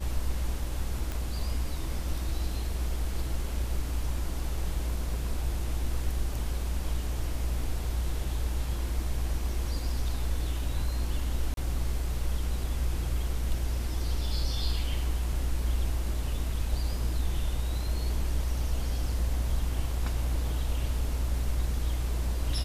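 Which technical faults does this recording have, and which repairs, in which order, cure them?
0:01.12: click
0:11.54–0:11.57: drop-out 32 ms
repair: click removal
repair the gap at 0:11.54, 32 ms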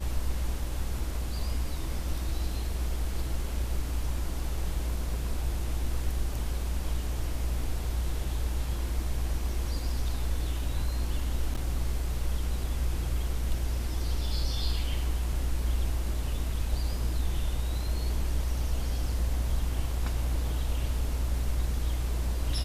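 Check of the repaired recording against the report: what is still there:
none of them is left

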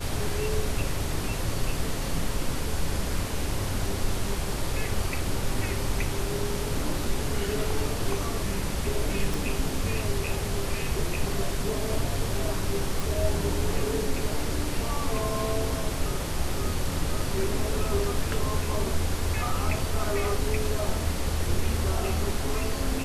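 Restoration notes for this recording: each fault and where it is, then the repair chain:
0:09.34: click
0:13.00: click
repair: click removal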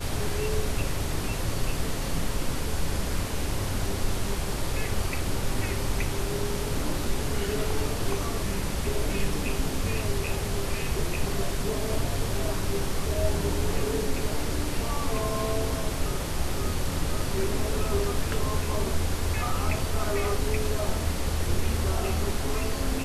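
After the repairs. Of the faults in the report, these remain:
none of them is left

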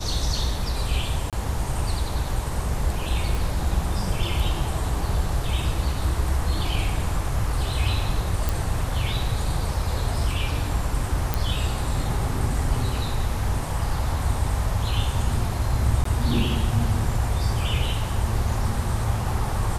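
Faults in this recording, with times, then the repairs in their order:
0:01.30–0:01.33: drop-out 27 ms
0:03.35: click
0:08.49: click
0:11.34: click
0:16.04–0:16.05: drop-out 14 ms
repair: click removal
repair the gap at 0:01.30, 27 ms
repair the gap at 0:16.04, 14 ms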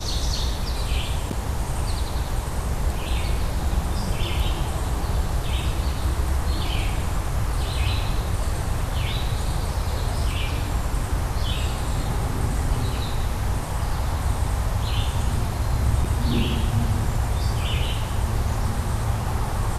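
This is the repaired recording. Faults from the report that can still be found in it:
0:03.35: click

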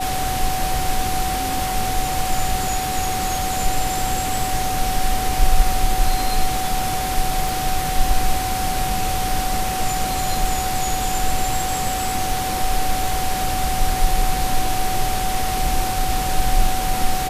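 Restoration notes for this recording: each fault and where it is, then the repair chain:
whistle 750 Hz −23 dBFS
0:07.49: click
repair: click removal
notch filter 750 Hz, Q 30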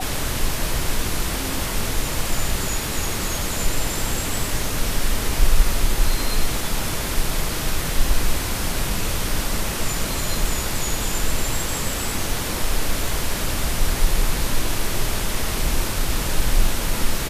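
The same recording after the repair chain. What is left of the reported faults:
none of them is left

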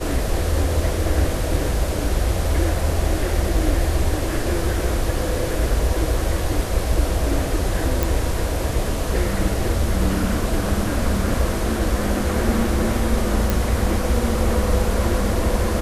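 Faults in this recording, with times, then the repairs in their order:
0:08.03: click
0:13.50: click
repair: click removal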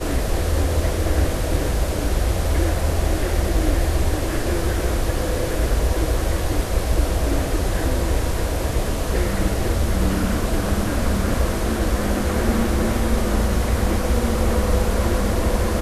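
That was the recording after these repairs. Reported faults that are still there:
none of them is left

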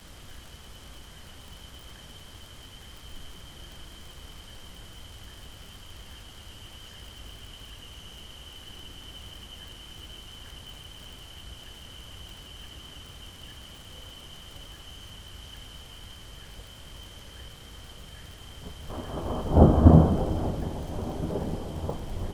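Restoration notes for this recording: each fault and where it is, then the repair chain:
surface crackle 53 per second −38 dBFS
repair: click removal

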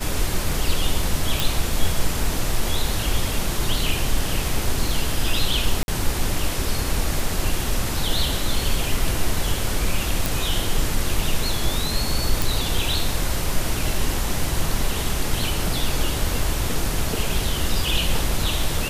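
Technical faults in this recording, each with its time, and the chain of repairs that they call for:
0:01.40: click
0:05.83–0:05.88: drop-out 51 ms
0:10.26: click
0:12.42: click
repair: click removal
repair the gap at 0:05.83, 51 ms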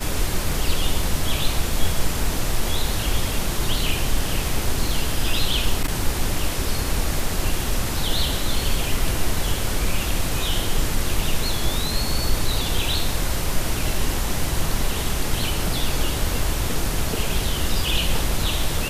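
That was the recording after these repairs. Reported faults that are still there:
none of them is left

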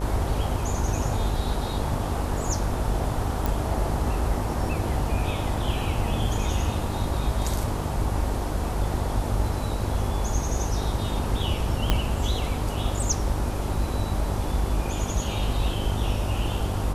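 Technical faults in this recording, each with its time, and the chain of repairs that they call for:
mains buzz 50 Hz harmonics 22 −30 dBFS
0:03.46: click
0:11.90: click −7 dBFS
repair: click removal
hum removal 50 Hz, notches 22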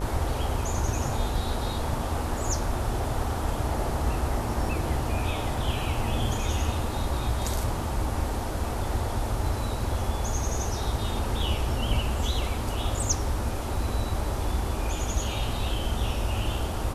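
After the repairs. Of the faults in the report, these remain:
0:11.90: click

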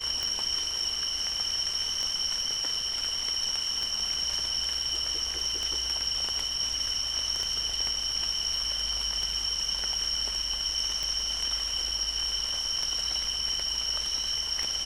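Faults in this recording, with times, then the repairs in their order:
scratch tick 33 1/3 rpm −17 dBFS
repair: click removal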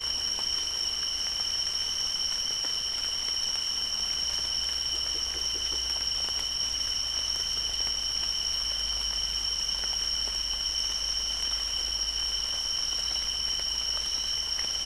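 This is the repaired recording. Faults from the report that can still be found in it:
none of them is left

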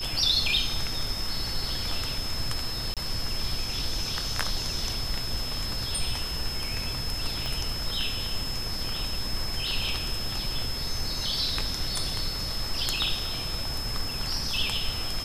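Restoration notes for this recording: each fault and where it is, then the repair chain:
whistle 5,200 Hz −33 dBFS
0:02.94–0:02.97: drop-out 27 ms
0:07.46: click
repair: click removal
notch filter 5,200 Hz, Q 30
repair the gap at 0:02.94, 27 ms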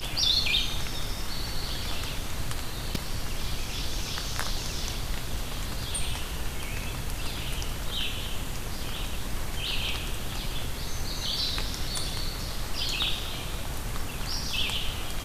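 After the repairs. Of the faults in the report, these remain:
0:07.46: click

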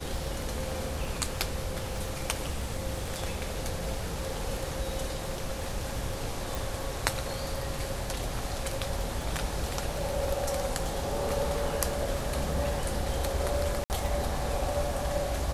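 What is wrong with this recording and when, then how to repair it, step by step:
surface crackle 34 per second −38 dBFS
0:06.55: click
0:13.84–0:13.90: drop-out 59 ms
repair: click removal
repair the gap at 0:13.84, 59 ms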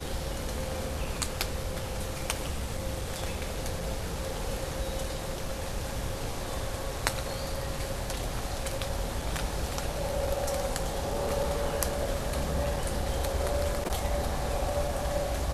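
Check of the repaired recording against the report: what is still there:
0:06.55: click

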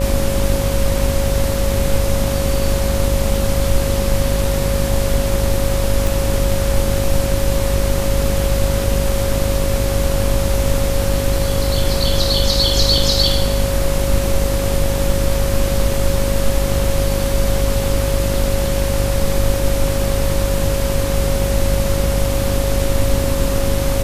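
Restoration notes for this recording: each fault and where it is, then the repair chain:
mains buzz 50 Hz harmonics 25 −20 dBFS
whistle 550 Hz −22 dBFS
0:06.07: click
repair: click removal
notch filter 550 Hz, Q 30
hum removal 50 Hz, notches 25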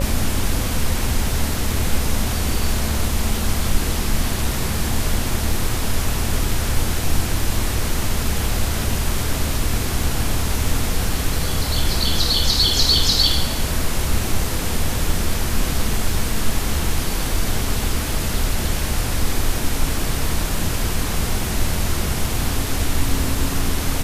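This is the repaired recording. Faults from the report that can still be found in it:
none of them is left

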